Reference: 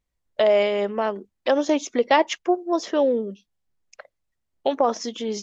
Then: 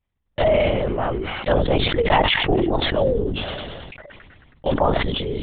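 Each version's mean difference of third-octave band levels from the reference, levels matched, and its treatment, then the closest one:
11.5 dB: delay with a high-pass on its return 107 ms, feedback 74%, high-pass 2,200 Hz, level −23.5 dB
linear-prediction vocoder at 8 kHz whisper
level that may fall only so fast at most 25 dB per second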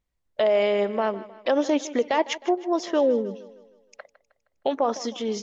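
2.5 dB: high-shelf EQ 5,700 Hz −4.5 dB
brickwall limiter −13 dBFS, peak gain reduction 8 dB
on a send: feedback echo with a high-pass in the loop 156 ms, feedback 48%, high-pass 170 Hz, level −16.5 dB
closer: second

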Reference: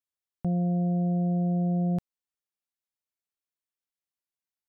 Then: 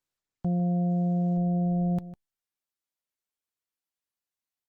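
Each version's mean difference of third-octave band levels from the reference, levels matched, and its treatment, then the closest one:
1.0 dB: on a send: single-tap delay 152 ms −15 dB
on the sum: Opus 20 kbit/s 48,000 Hz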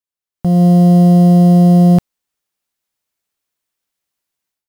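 5.5 dB: in parallel at −4 dB: bit reduction 7 bits
on the sum: automatic gain control gain up to 14.5 dB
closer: first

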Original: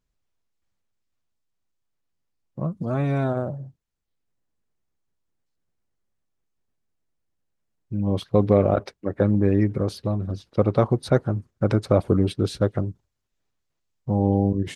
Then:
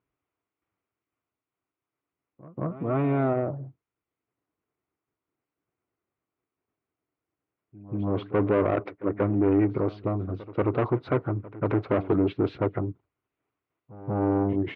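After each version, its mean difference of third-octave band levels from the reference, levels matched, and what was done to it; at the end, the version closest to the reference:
5.0 dB: parametric band 220 Hz −9.5 dB 0.64 octaves
soft clipping −22 dBFS, distortion −7 dB
loudspeaker in its box 160–2,200 Hz, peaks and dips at 160 Hz −6 dB, 290 Hz +4 dB, 550 Hz −7 dB, 850 Hz −5 dB, 1,700 Hz −9 dB
on a send: backwards echo 185 ms −17.5 dB
on the sum: level +7 dB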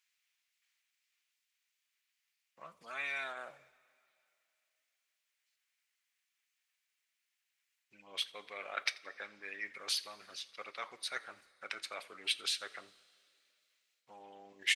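15.5 dB: reversed playback
downward compressor, threshold −26 dBFS, peak gain reduction 14 dB
reversed playback
high-pass with resonance 2,200 Hz, resonance Q 2.2
echo with shifted repeats 86 ms, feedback 34%, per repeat −69 Hz, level −22.5 dB
coupled-rooms reverb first 0.27 s, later 2.8 s, from −18 dB, DRR 13.5 dB
level +5.5 dB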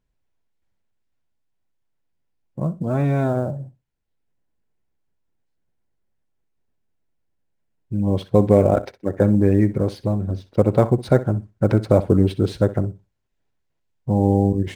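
2.5 dB: in parallel at −9.5 dB: sample-rate reduction 8,400 Hz, jitter 20%
on the sum: high-shelf EQ 4,300 Hz −7 dB
notch filter 1,200 Hz, Q 7.9
flutter between parallel walls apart 10.8 metres, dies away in 0.23 s
level +1 dB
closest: third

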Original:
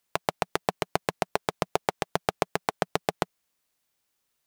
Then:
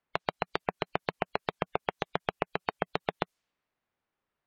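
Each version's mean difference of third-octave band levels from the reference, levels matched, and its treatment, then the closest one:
6.0 dB: gate on every frequency bin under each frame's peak −20 dB strong
low-pass that shuts in the quiet parts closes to 1,800 Hz, open at −29.5 dBFS
downward compressor, threshold −25 dBFS, peak gain reduction 7.5 dB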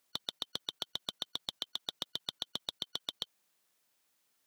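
8.0 dB: band-splitting scrambler in four parts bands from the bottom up 2413
output level in coarse steps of 20 dB
high-pass filter 130 Hz 12 dB per octave
level +4 dB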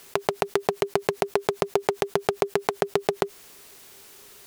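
3.5 dB: parametric band 400 Hz +14 dB 0.24 octaves
pitch vibrato 15 Hz 7.8 cents
envelope flattener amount 50%
level −1 dB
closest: third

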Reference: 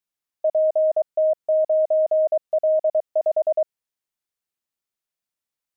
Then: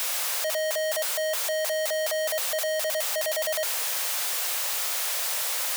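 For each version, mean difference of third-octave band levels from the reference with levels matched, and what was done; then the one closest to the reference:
18.5 dB: sign of each sample alone
Butterworth high-pass 470 Hz 72 dB per octave
level −3.5 dB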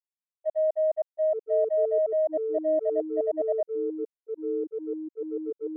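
3.0 dB: noise gate −18 dBFS, range −32 dB
delay with pitch and tempo change per echo 689 ms, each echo −6 semitones, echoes 2, each echo −6 dB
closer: second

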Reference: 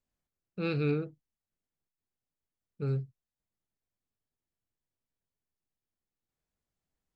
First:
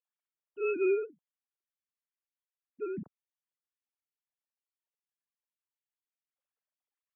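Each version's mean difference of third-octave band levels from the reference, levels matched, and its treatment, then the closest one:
12.0 dB: three sine waves on the formant tracks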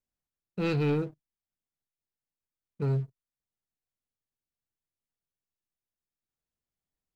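3.0 dB: leveller curve on the samples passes 2
level −2 dB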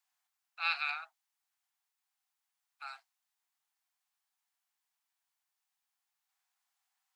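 16.5 dB: Butterworth high-pass 720 Hz 96 dB per octave
level +8 dB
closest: second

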